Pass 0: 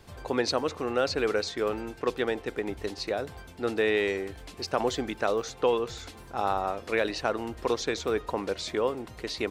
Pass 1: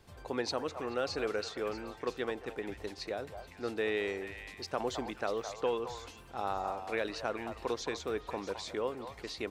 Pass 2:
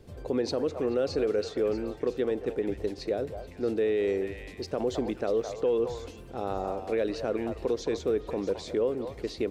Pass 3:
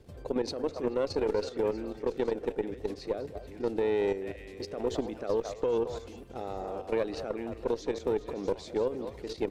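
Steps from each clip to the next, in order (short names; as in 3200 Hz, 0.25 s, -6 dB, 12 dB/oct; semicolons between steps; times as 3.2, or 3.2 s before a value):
delay with a stepping band-pass 0.215 s, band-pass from 860 Hz, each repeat 1.4 oct, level -5 dB; gain -7.5 dB
resonant low shelf 670 Hz +9 dB, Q 1.5; limiter -19 dBFS, peak gain reduction 6.5 dB; on a send at -22 dB: reverb RT60 1.0 s, pre-delay 4 ms
reverse delay 0.623 s, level -13 dB; level quantiser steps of 9 dB; added harmonics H 2 -12 dB, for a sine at -18.5 dBFS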